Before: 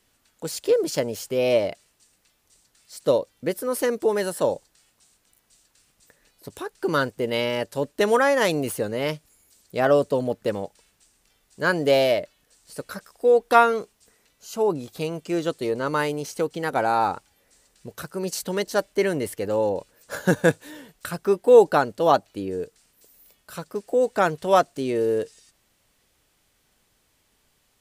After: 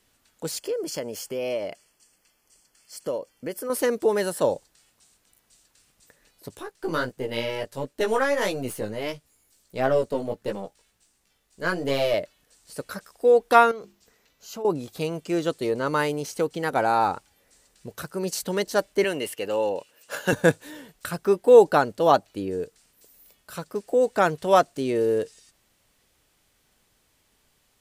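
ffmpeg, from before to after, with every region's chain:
-filter_complex "[0:a]asettb=1/sr,asplit=3[a][b][c];[a]atrim=end=0.584[d];[b]atrim=start=0.58:end=3.7,asetpts=PTS-STARTPTS,afade=t=in:d=0.004:c=qsin,afade=t=out:st=3.116:d=0.004:c=qsin,equalizer=f=75:w=0.73:g=-8.5,acompressor=threshold=-31dB:ratio=2:attack=3.2:release=140:knee=1:detection=peak,asuperstop=centerf=3800:order=12:qfactor=5.6[e];[c]atrim=start=3.696[f];[d][e]acrossfade=d=0.004:c1=hsin:c2=qsin[g];[g][f]acrossfade=d=0.004:c1=qsin:c2=hsin,asettb=1/sr,asplit=3[h][i][j];[h]atrim=end=6.554[k];[i]atrim=start=6.55:end=12.14,asetpts=PTS-STARTPTS,afade=t=in:d=0.004:c=qsin,afade=t=out:st=5.586:d=0.004:c=qsin,aeval=exprs='if(lt(val(0),0),0.708*val(0),val(0))':c=same,flanger=delay=15:depth=3.8:speed=1.5[l];[j]atrim=start=12.136[m];[k][l]acrossfade=d=0.004:c1=hsin:c2=qsin[n];[n][m]acrossfade=d=0.004:c1=qsin:c2=hsin,asettb=1/sr,asplit=3[o][p][q];[o]atrim=end=13.714[r];[p]atrim=start=13.71:end=14.65,asetpts=PTS-STARTPTS,afade=t=in:d=0.004:c=qsin,afade=t=out:st=0.936:d=0.004:c=qsin,bandreject=f=50:t=h:w=6,bandreject=f=100:t=h:w=6,bandreject=f=150:t=h:w=6,bandreject=f=200:t=h:w=6,bandreject=f=250:t=h:w=6,bandreject=f=300:t=h:w=6,bandreject=f=350:t=h:w=6,acompressor=threshold=-33dB:ratio=4:attack=3.2:release=140:knee=1:detection=peak,equalizer=f=9.2k:t=o:w=0.36:g=-13[s];[q]atrim=start=14.646[t];[r][s]acrossfade=d=0.004:c1=hsin:c2=qsin[u];[u][t]acrossfade=d=0.004:c1=qsin:c2=hsin,asettb=1/sr,asplit=3[v][w][x];[v]atrim=end=19.044[y];[w]atrim=start=19.04:end=20.33,asetpts=PTS-STARTPTS,afade=t=in:d=0.004:c=qsin,afade=t=out:st=1.286:d=0.004:c=qsin,highpass=f=400:p=1,equalizer=f=2.8k:t=o:w=0.23:g=12[z];[x]atrim=start=20.326[aa];[y][z]acrossfade=d=0.004:c1=hsin:c2=qsin[ab];[ab][aa]acrossfade=d=0.004:c1=qsin:c2=hsin"

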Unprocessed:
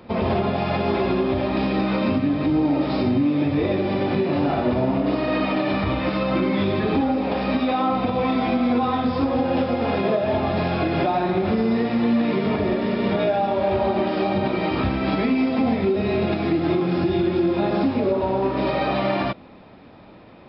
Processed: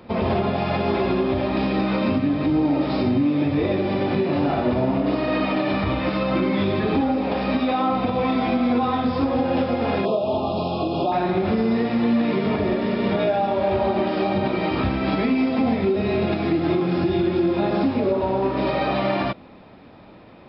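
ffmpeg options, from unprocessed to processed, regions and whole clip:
-filter_complex "[0:a]asettb=1/sr,asplit=3[a][b][c];[a]atrim=end=10.054[d];[b]atrim=start=10.05:end=11.12,asetpts=PTS-STARTPTS,afade=t=in:d=0.004:c=qsin,afade=t=out:st=1.066:d=0.004:c=qsin,asuperstop=centerf=1800:order=8:qfactor=1.2,lowshelf=f=160:g=-7.5[e];[c]atrim=start=11.116[f];[d][e]acrossfade=d=0.004:c1=hsin:c2=qsin[g];[g][f]acrossfade=d=0.004:c1=qsin:c2=hsin"

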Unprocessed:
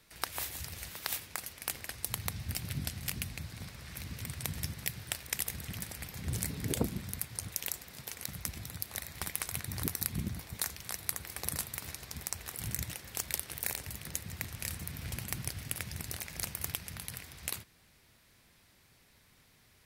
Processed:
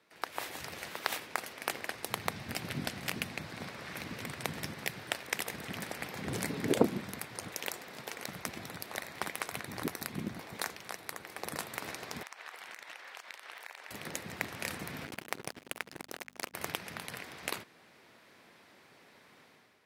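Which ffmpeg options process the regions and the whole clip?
-filter_complex "[0:a]asettb=1/sr,asplit=3[a][b][c];[a]atrim=end=12.234[d];[b]atrim=start=12.23:end=13.91,asetpts=PTS-STARTPTS,afade=t=in:d=0.004:c=qsin,afade=t=out:st=1.676:d=0.004:c=qsin,highpass=950,equalizer=f=14k:t=o:w=1.8:g=-13,acompressor=threshold=-47dB:ratio=6:attack=3.2:release=140:knee=1:detection=peak[e];[c]atrim=start=13.906[f];[d][e]acrossfade=d=0.004:c1=hsin:c2=qsin[g];[g][f]acrossfade=d=0.004:c1=qsin:c2=hsin,asettb=1/sr,asplit=3[h][i][j];[h]atrim=end=15.054[k];[i]atrim=start=15.05:end=16.54,asetpts=PTS-STARTPTS,afade=t=in:d=0.004:c=qsin,afade=t=out:st=1.486:d=0.004:c=qsin,aeval=exprs='sgn(val(0))*max(abs(val(0))-0.0112,0)':c=same,aeval=exprs='val(0)+0.001*(sin(2*PI*50*n/s)+sin(2*PI*2*50*n/s)/2+sin(2*PI*3*50*n/s)/3+sin(2*PI*4*50*n/s)/4+sin(2*PI*5*50*n/s)/5)':c=same[l];[j]atrim=start=16.536[m];[k][l]acrossfade=d=0.004:c1=hsin:c2=qsin[n];[n][m]acrossfade=d=0.004:c1=qsin:c2=hsin,highpass=300,dynaudnorm=f=120:g=7:m=10dB,lowpass=f=1.4k:p=1,volume=2dB"

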